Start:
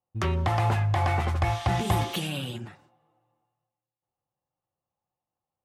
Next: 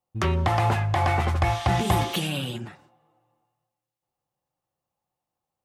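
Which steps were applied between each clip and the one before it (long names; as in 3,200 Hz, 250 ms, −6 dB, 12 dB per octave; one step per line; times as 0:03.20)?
parametric band 100 Hz −5 dB 0.28 octaves
level +3.5 dB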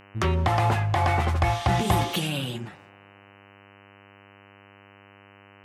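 hum with harmonics 100 Hz, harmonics 30, −52 dBFS −2 dB per octave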